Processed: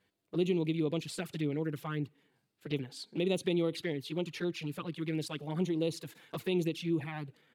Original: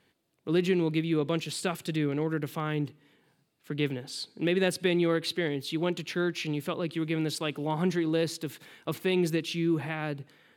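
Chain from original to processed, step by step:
flanger swept by the level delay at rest 10.2 ms, full sweep at −24 dBFS
tempo change 1.4×
level −3.5 dB

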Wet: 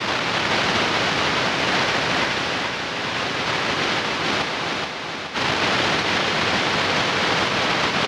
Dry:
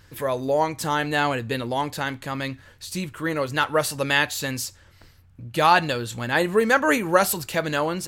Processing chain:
every bin's largest magnitude spread in time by 480 ms
parametric band 770 Hz +14 dB 0.47 octaves
brickwall limiter −6.5 dBFS, peak gain reduction 14.5 dB
cochlear-implant simulation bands 1
high-frequency loss of the air 280 metres
repeating echo 425 ms, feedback 58%, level −4 dB
level −2 dB

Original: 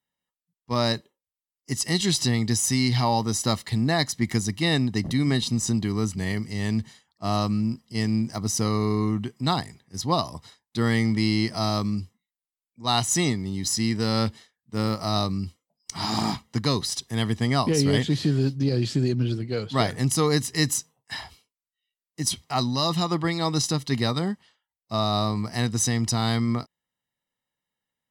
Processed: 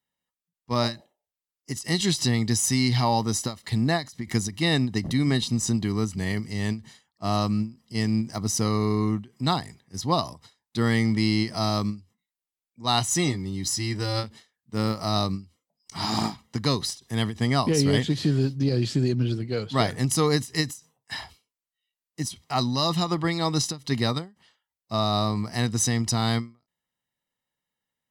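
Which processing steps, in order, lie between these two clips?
0:00.87–0:01.35: healed spectral selection 370–930 Hz both
0:12.99–0:14.24: notch comb filter 220 Hz
every ending faded ahead of time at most 210 dB per second

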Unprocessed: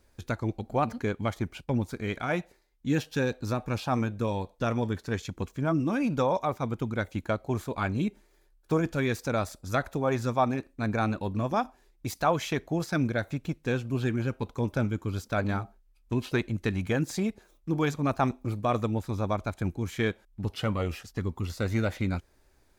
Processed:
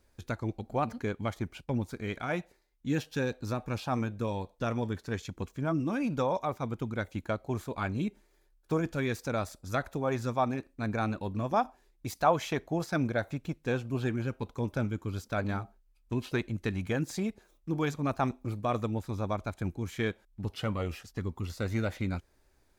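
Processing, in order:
0:11.48–0:14.14: dynamic equaliser 760 Hz, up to +5 dB, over −39 dBFS, Q 0.99
level −3.5 dB

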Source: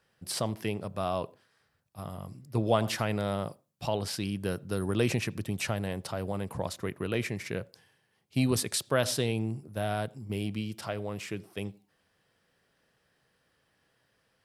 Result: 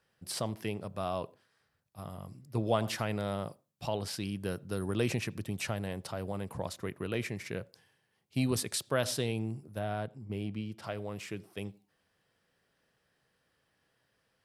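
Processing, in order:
0:09.79–0:10.84: high-shelf EQ 3,800 Hz −11.5 dB
level −3.5 dB

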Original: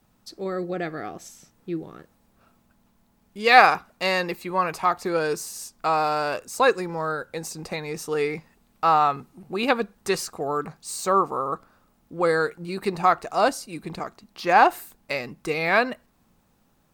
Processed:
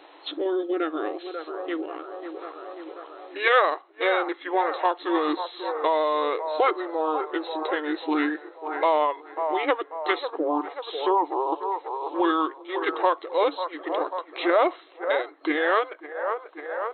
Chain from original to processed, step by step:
delay with a band-pass on its return 540 ms, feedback 51%, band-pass 980 Hz, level −12 dB
formants moved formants −4 semitones
brick-wall band-pass 290–4,200 Hz
multiband upward and downward compressor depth 70%

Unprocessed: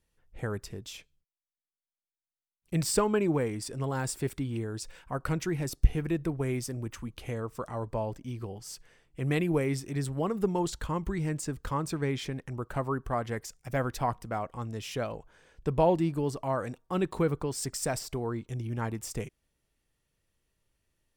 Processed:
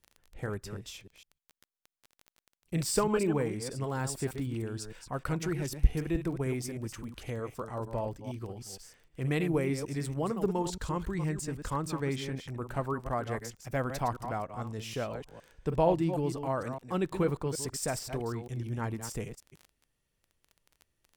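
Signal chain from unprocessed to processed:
delay that plays each chunk backwards 154 ms, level −8.5 dB
surface crackle 12 per second −38 dBFS
level −2 dB

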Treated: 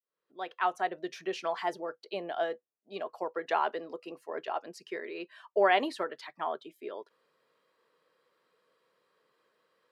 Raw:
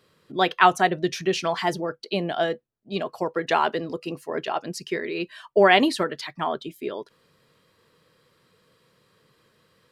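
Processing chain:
fade in at the beginning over 1.23 s
high-pass filter 490 Hz 12 dB per octave
high-shelf EQ 2,200 Hz −12 dB
level −4.5 dB

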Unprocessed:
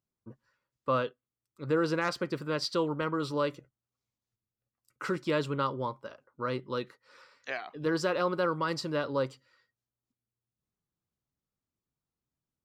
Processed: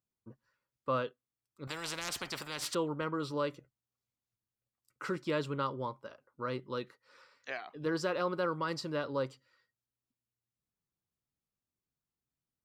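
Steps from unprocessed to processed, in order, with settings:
0:01.67–0:02.75: every bin compressed towards the loudest bin 4 to 1
level −4 dB

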